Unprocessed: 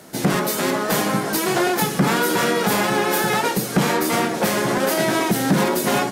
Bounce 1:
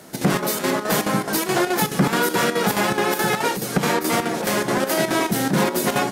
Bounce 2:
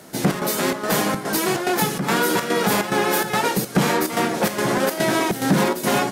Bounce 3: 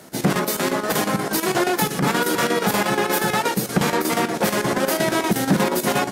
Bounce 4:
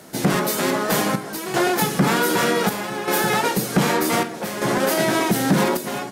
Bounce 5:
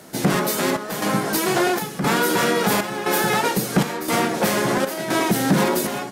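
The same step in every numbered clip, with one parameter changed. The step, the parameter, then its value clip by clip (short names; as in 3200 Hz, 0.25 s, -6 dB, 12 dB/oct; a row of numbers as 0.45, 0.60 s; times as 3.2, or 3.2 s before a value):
chopper, rate: 4.7, 2.4, 8.4, 0.65, 0.98 Hz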